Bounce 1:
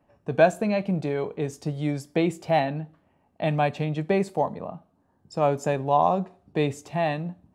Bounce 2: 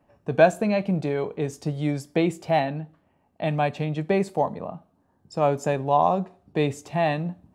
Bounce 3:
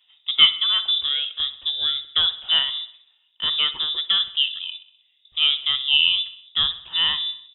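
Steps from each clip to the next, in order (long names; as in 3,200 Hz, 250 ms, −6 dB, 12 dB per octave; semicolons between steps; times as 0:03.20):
speech leveller within 4 dB 2 s
repeating echo 63 ms, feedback 58%, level −16.5 dB; voice inversion scrambler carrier 3,700 Hz; level +1.5 dB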